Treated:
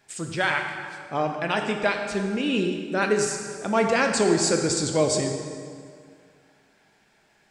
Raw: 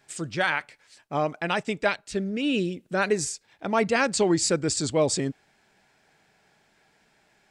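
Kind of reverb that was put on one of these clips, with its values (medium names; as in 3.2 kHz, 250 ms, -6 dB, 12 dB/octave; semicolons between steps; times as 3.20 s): plate-style reverb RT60 2.1 s, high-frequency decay 0.75×, DRR 3 dB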